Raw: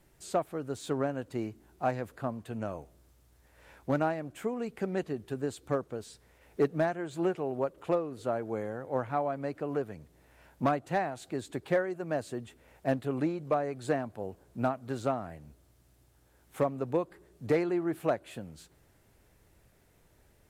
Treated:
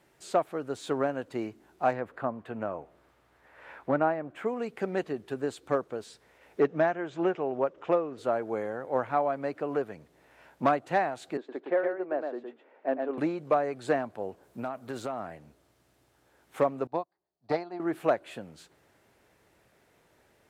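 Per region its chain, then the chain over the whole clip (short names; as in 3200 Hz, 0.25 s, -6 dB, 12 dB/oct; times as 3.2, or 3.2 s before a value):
1.93–4.46 EQ curve 1200 Hz 0 dB, 1900 Hz -3 dB, 5900 Hz -16 dB + mismatched tape noise reduction encoder only
6.6–8.18 LPF 6000 Hz 24 dB/oct + bell 4300 Hz -8.5 dB 0.32 oct
11.37–13.18 HPF 270 Hz 24 dB/oct + tape spacing loss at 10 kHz 39 dB + echo 0.114 s -4.5 dB
14.43–15.2 high shelf 11000 Hz +12 dB + compressor 10:1, threshold -31 dBFS
16.87–17.8 EQ curve 150 Hz 0 dB, 340 Hz -4 dB, 490 Hz -7 dB, 700 Hz +9 dB, 1500 Hz -4 dB, 3000 Hz -5 dB, 4600 Hz +9 dB, 6700 Hz -8 dB + upward expander 2.5:1, over -45 dBFS
whole clip: HPF 400 Hz 6 dB/oct; high shelf 5800 Hz -11 dB; gain +5.5 dB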